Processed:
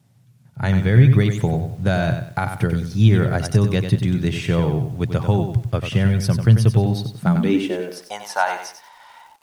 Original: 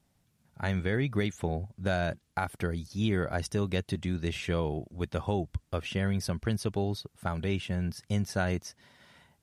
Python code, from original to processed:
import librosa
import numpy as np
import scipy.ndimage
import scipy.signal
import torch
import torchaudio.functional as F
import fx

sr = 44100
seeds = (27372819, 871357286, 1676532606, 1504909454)

y = fx.filter_sweep_highpass(x, sr, from_hz=120.0, to_hz=880.0, start_s=7.09, end_s=8.19, q=7.8)
y = fx.echo_crushed(y, sr, ms=94, feedback_pct=35, bits=9, wet_db=-7.5)
y = y * 10.0 ** (7.0 / 20.0)